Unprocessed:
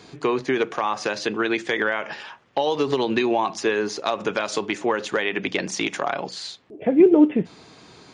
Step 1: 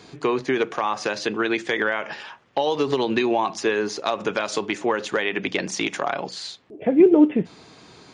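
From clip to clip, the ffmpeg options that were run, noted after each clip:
-af anull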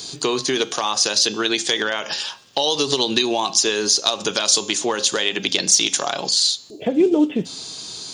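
-af "bandreject=f=268.5:t=h:w=4,bandreject=f=537:t=h:w=4,bandreject=f=805.5:t=h:w=4,bandreject=f=1074:t=h:w=4,bandreject=f=1342.5:t=h:w=4,bandreject=f=1611:t=h:w=4,bandreject=f=1879.5:t=h:w=4,bandreject=f=2148:t=h:w=4,bandreject=f=2416.5:t=h:w=4,bandreject=f=2685:t=h:w=4,bandreject=f=2953.5:t=h:w=4,bandreject=f=3222:t=h:w=4,bandreject=f=3490.5:t=h:w=4,bandreject=f=3759:t=h:w=4,bandreject=f=4027.5:t=h:w=4,bandreject=f=4296:t=h:w=4,bandreject=f=4564.5:t=h:w=4,bandreject=f=4833:t=h:w=4,bandreject=f=5101.5:t=h:w=4,bandreject=f=5370:t=h:w=4,bandreject=f=5638.5:t=h:w=4,bandreject=f=5907:t=h:w=4,bandreject=f=6175.5:t=h:w=4,bandreject=f=6444:t=h:w=4,bandreject=f=6712.5:t=h:w=4,bandreject=f=6981:t=h:w=4,bandreject=f=7249.5:t=h:w=4,bandreject=f=7518:t=h:w=4,aexciter=amount=8.2:drive=5.6:freq=3200,acompressor=threshold=0.0708:ratio=1.5,volume=1.33"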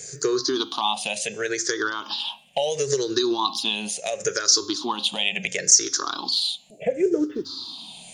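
-af "afftfilt=real='re*pow(10,23/40*sin(2*PI*(0.52*log(max(b,1)*sr/1024/100)/log(2)-(-0.72)*(pts-256)/sr)))':imag='im*pow(10,23/40*sin(2*PI*(0.52*log(max(b,1)*sr/1024/100)/log(2)-(-0.72)*(pts-256)/sr)))':win_size=1024:overlap=0.75,volume=0.335"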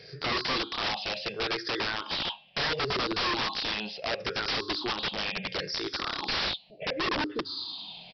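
-af "equalizer=f=240:t=o:w=0.45:g=-8.5,aresample=11025,aeval=exprs='(mod(13.3*val(0)+1,2)-1)/13.3':c=same,aresample=44100,volume=0.841"

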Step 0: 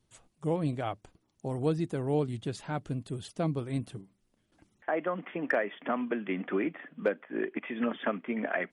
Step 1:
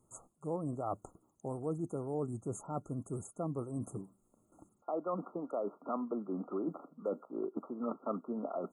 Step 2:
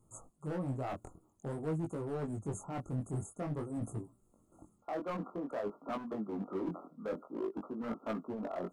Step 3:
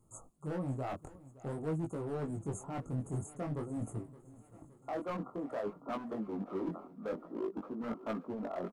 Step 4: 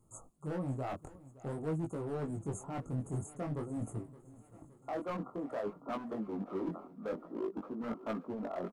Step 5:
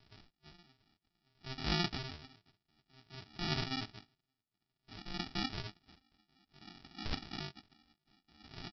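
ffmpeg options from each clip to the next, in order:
-af "areverse,acompressor=threshold=0.01:ratio=4,areverse,lowshelf=f=130:g=-10,afftfilt=real='re*(1-between(b*sr/4096,1400,6300))':imag='im*(1-between(b*sr/4096,1400,6300))':win_size=4096:overlap=0.75,volume=2"
-af "lowshelf=f=120:g=10,volume=44.7,asoftclip=hard,volume=0.0224,flanger=delay=18:depth=5.6:speed=0.5,volume=1.41"
-af "aecho=1:1:568|1136|1704|2272|2840:0.112|0.0651|0.0377|0.0219|0.0127"
-af anull
-af "aresample=11025,acrusher=samples=21:mix=1:aa=0.000001,aresample=44100,crystalizer=i=8:c=0,aeval=exprs='val(0)*pow(10,-38*(0.5-0.5*cos(2*PI*0.56*n/s))/20)':c=same"

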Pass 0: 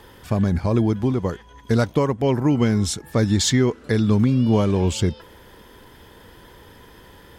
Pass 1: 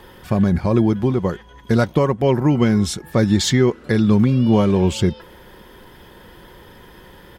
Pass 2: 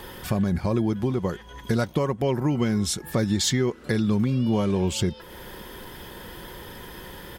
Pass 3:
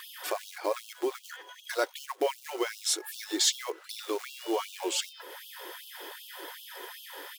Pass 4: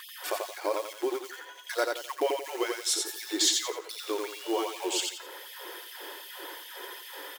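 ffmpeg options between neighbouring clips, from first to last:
-af "equalizer=f=7200:w=0.86:g=-5,aecho=1:1:5.5:0.3,volume=1.41"
-af "highshelf=f=4600:g=7.5,acompressor=threshold=0.0282:ratio=2,volume=1.33"
-af "acrusher=bits=6:mode=log:mix=0:aa=0.000001,afftfilt=real='re*gte(b*sr/1024,280*pow(2700/280,0.5+0.5*sin(2*PI*2.6*pts/sr)))':imag='im*gte(b*sr/1024,280*pow(2700/280,0.5+0.5*sin(2*PI*2.6*pts/sr)))':win_size=1024:overlap=0.75"
-af "aecho=1:1:87|174|261|348:0.631|0.196|0.0606|0.0188"

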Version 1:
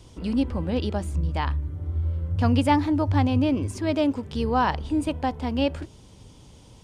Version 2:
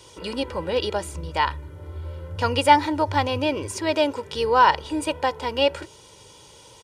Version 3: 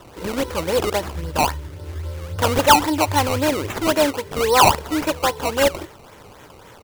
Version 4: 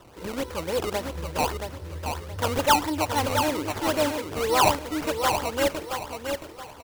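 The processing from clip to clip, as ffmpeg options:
-af "highpass=f=660:p=1,aecho=1:1:2.1:0.63,volume=2.24"
-filter_complex "[0:a]asplit=2[s0][s1];[s1]asoftclip=type=tanh:threshold=0.133,volume=0.708[s2];[s0][s2]amix=inputs=2:normalize=0,acrusher=samples=18:mix=1:aa=0.000001:lfo=1:lforange=18:lforate=3.7"
-af "aecho=1:1:674|1348|2022|2696:0.501|0.16|0.0513|0.0164,volume=0.447"

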